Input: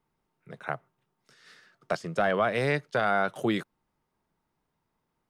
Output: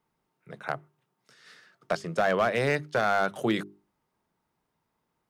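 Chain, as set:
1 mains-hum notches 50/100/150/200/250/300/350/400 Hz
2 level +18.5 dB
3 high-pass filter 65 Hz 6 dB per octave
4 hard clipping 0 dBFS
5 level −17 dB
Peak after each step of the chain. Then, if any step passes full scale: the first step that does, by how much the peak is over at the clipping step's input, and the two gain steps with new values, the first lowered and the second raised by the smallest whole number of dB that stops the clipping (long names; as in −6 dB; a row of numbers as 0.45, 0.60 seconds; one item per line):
−14.0, +4.5, +4.5, 0.0, −17.0 dBFS
step 2, 4.5 dB
step 2 +13.5 dB, step 5 −12 dB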